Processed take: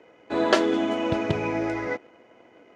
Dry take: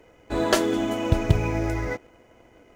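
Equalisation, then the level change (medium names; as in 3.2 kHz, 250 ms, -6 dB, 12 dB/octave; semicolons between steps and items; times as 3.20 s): band-pass 210–4300 Hz; +1.5 dB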